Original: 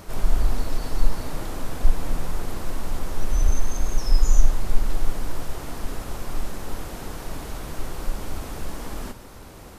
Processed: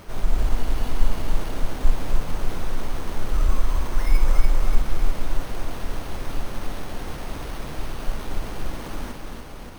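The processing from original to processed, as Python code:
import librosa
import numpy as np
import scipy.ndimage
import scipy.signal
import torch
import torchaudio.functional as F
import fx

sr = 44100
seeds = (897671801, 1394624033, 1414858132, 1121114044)

y = fx.echo_feedback(x, sr, ms=290, feedback_pct=53, wet_db=-4)
y = np.repeat(y[::6], 6)[:len(y)]
y = F.gain(torch.from_numpy(y), -1.0).numpy()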